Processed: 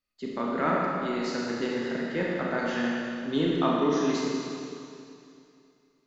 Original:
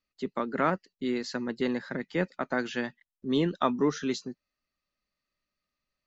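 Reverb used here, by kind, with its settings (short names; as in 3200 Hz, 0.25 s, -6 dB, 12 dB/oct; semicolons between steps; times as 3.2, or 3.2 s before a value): Schroeder reverb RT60 2.6 s, combs from 26 ms, DRR -4 dB; gain -3 dB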